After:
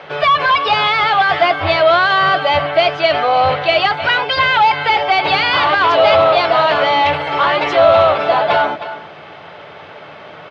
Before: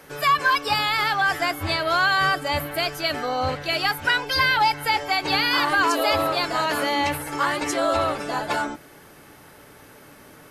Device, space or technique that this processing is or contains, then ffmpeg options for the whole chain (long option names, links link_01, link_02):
overdrive pedal into a guitar cabinet: -filter_complex "[0:a]aecho=1:1:312:0.15,asplit=2[link_01][link_02];[link_02]highpass=frequency=720:poles=1,volume=18dB,asoftclip=type=tanh:threshold=-8.5dB[link_03];[link_01][link_03]amix=inputs=2:normalize=0,lowpass=frequency=4500:poles=1,volume=-6dB,highpass=77,equalizer=frequency=92:width_type=q:width=4:gain=9,equalizer=frequency=160:width_type=q:width=4:gain=7,equalizer=frequency=270:width_type=q:width=4:gain=-8,equalizer=frequency=660:width_type=q:width=4:gain=8,equalizer=frequency=1700:width_type=q:width=4:gain=-5,equalizer=frequency=3300:width_type=q:width=4:gain=3,lowpass=frequency=3700:width=0.5412,lowpass=frequency=3700:width=1.3066,volume=3dB"